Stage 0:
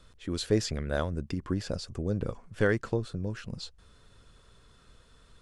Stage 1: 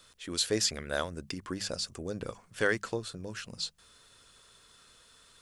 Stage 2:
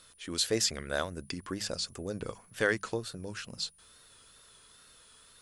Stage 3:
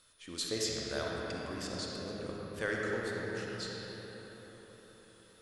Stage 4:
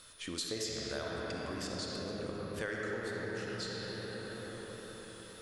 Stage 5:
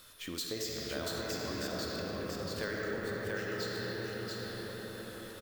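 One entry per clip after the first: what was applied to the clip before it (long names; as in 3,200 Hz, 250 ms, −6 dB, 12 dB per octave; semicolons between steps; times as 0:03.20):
spectral tilt +3 dB per octave; mains-hum notches 50/100/150/200 Hz
steady tone 10,000 Hz −61 dBFS; tape wow and flutter 61 cents
convolution reverb RT60 4.9 s, pre-delay 15 ms, DRR −3.5 dB; level −8 dB
downward compressor 3 to 1, threshold −49 dBFS, peak gain reduction 14 dB; level +9.5 dB
bad sample-rate conversion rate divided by 2×, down filtered, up hold; on a send: single-tap delay 685 ms −3 dB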